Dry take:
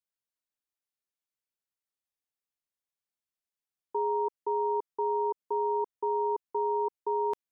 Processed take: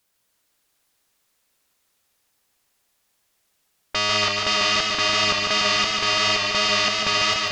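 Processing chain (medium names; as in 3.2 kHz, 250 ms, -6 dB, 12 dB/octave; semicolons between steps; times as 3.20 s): sine folder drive 15 dB, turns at -22 dBFS; modulated delay 146 ms, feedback 79%, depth 66 cents, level -4.5 dB; trim +3 dB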